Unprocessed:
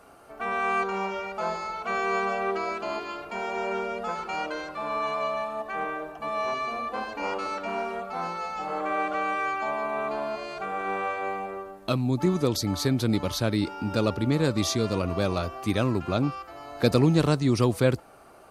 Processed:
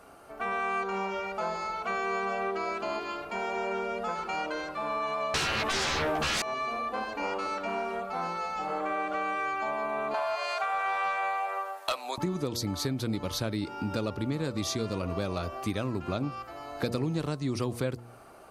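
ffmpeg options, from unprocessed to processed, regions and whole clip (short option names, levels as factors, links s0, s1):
-filter_complex "[0:a]asettb=1/sr,asplit=3[s0][s1][s2];[s0]atrim=end=5.344[s3];[s1]atrim=start=5.34:end=6.42,asetpts=PTS-STARTPTS,afade=t=in:d=0.004:c=qsin,afade=t=out:st=1.076:d=0.004:c=qsin,aeval=exprs='0.106*sin(PI/2*6.31*val(0)/0.106)':c=same,asplit=2[s4][s5];[s5]adelay=13,volume=0.75[s6];[s4][s6]amix=inputs=2:normalize=0,atrim=end_sample=47628[s7];[s2]atrim=start=6.416[s8];[s3][s7]acrossfade=d=0.004:c1=hsin:c2=qsin[s9];[s9][s8]acrossfade=d=0.004:c1=qsin:c2=hsin,asettb=1/sr,asplit=3[s10][s11][s12];[s10]atrim=end=10.144[s13];[s11]atrim=start=10.14:end=12.18,asetpts=PTS-STARTPTS,afade=t=in:d=0.004:c=qsin,afade=t=out:st=2.036:d=0.004:c=qsin,highpass=f=660:w=0.5412,highpass=f=660:w=1.3066,aeval=exprs='0.15*sin(PI/2*1.78*val(0)/0.15)':c=same[s14];[s12]atrim=start=12.176[s15];[s13][s14]acrossfade=d=0.004:c1=hsin:c2=qsin[s16];[s16][s15]acrossfade=d=0.004:c1=qsin:c2=hsin,bandreject=f=118.8:t=h:w=4,bandreject=f=237.6:t=h:w=4,bandreject=f=356.4:t=h:w=4,bandreject=f=475.2:t=h:w=4,bandreject=f=594:t=h:w=4,bandreject=f=712.8:t=h:w=4,bandreject=f=831.6:t=h:w=4,bandreject=f=950.4:t=h:w=4,bandreject=f=1069.2:t=h:w=4,acompressor=threshold=0.0398:ratio=4"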